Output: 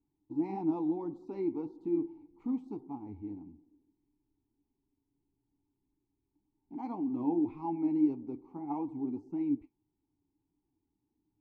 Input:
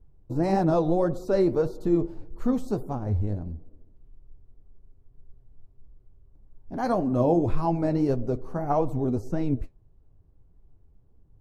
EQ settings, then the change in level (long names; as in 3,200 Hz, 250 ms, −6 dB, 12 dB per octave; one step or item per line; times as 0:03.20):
formant filter u
0.0 dB